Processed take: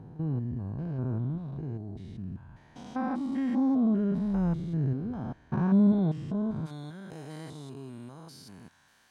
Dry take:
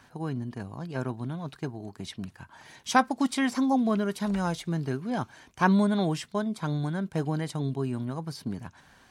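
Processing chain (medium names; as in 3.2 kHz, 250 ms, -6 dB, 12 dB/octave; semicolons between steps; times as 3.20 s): spectrogram pixelated in time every 200 ms; tilt EQ -4 dB/octave, from 6.65 s +2 dB/octave; trim -6.5 dB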